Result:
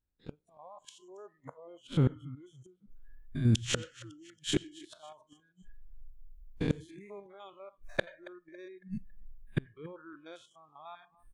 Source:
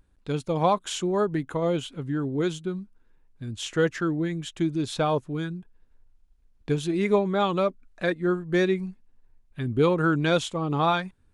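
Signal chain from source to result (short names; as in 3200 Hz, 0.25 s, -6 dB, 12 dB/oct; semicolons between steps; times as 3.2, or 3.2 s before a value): stepped spectrum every 0.1 s; flipped gate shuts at -26 dBFS, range -34 dB; 6.72–8.05 high shelf 2800 Hz +6 dB; feedback echo 0.277 s, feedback 50%, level -19 dB; AGC gain up to 12 dB; 1.37–2.29 high shelf 9200 Hz -7 dB; reverb RT60 0.40 s, pre-delay 79 ms, DRR 18.5 dB; spectral noise reduction 21 dB; gain -1 dB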